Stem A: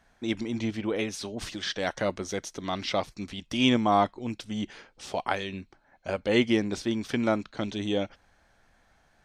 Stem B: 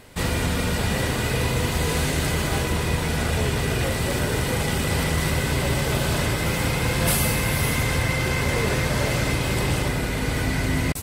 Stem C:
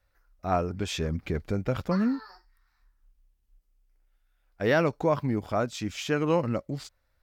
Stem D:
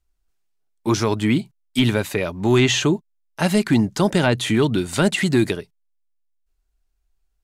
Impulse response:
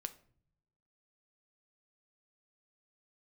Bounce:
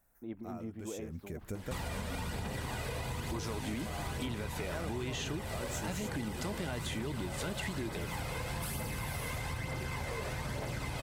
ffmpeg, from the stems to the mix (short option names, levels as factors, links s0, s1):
-filter_complex "[0:a]lowpass=1100,volume=0.251,asplit=2[s0][s1];[1:a]aphaser=in_gain=1:out_gain=1:delay=2:decay=0.38:speed=1.1:type=triangular,equalizer=f=880:t=o:w=0.8:g=5.5,adelay=1550,volume=0.531[s2];[2:a]alimiter=limit=0.106:level=0:latency=1:release=292,highshelf=f=8500:g=-5.5,aexciter=amount=7.9:drive=7.6:freq=6600,volume=0.473[s3];[3:a]adelay=2450,volume=0.316[s4];[s1]apad=whole_len=318485[s5];[s3][s5]sidechaincompress=threshold=0.00251:ratio=8:attack=33:release=174[s6];[s0][s2]amix=inputs=2:normalize=0,acompressor=threshold=0.02:ratio=3,volume=1[s7];[s6][s4]amix=inputs=2:normalize=0,alimiter=limit=0.0708:level=0:latency=1,volume=1[s8];[s7][s8]amix=inputs=2:normalize=0,acompressor=threshold=0.02:ratio=6"